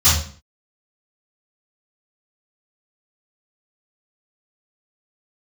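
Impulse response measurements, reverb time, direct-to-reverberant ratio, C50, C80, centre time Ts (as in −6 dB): 0.45 s, −14.5 dB, 2.5 dB, 8.5 dB, 45 ms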